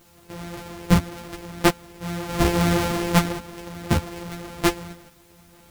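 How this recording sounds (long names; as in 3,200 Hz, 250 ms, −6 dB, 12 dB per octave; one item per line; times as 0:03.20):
a buzz of ramps at a fixed pitch in blocks of 256 samples
tremolo saw up 0.59 Hz, depth 65%
a quantiser's noise floor 10 bits, dither triangular
a shimmering, thickened sound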